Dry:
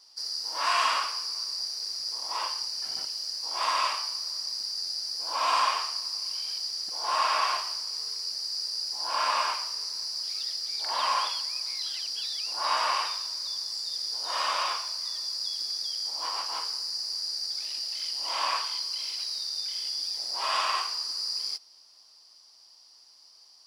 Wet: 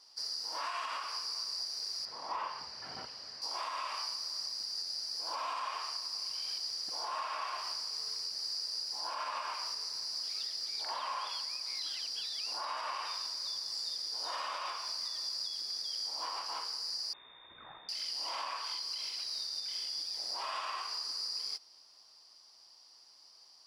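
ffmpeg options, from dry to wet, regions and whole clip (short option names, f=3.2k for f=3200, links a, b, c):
-filter_complex "[0:a]asettb=1/sr,asplit=3[a][b][c];[a]atrim=end=2.054[d];[b]atrim=start=2.05:end=3.42,asetpts=PTS-STARTPTS,afade=t=in:d=0.004:c=qsin,afade=t=out:st=1.366:d=0.004:c=qsin,bass=f=250:g=12,treble=f=4k:g=-8,asplit=2[e][f];[f]highpass=f=720:p=1,volume=10dB,asoftclip=type=tanh:threshold=-19.5dB[g];[e][g]amix=inputs=2:normalize=0,lowpass=f=1.7k:p=1,volume=-6dB[h];[c]atrim=start=3.416[i];[d][h]acrossfade=d=0.004:c1=hsin:c2=qsin[j];[j][i]acrossfade=d=0.004:c1=qsin:c2=hsin,asettb=1/sr,asplit=3[k][l][m];[k]atrim=end=17.134[n];[l]atrim=start=17.13:end=17.89,asetpts=PTS-STARTPTS,afade=t=in:d=0.004:c=qsin,afade=t=out:st=0.756:d=0.004:c=qsin,highpass=f=1.4k:w=0.5412,highpass=f=1.4k:w=1.3066,aeval=exprs='val(0)+0.002*(sin(2*PI*60*n/s)+sin(2*PI*2*60*n/s)/2+sin(2*PI*3*60*n/s)/3+sin(2*PI*4*60*n/s)/4+sin(2*PI*5*60*n/s)/5)':c=same,lowpass=f=3.1k:t=q:w=0.5098,lowpass=f=3.1k:t=q:w=0.6013,lowpass=f=3.1k:t=q:w=0.9,lowpass=f=3.1k:t=q:w=2.563,afreqshift=-3700[o];[m]atrim=start=17.886[p];[n][o]acrossfade=d=0.004:c1=hsin:c2=qsin[q];[q][p]acrossfade=d=0.004:c1=qsin:c2=hsin,highshelf=f=3.8k:g=-6,acompressor=threshold=-32dB:ratio=2.5,alimiter=level_in=4.5dB:limit=-24dB:level=0:latency=1:release=195,volume=-4.5dB"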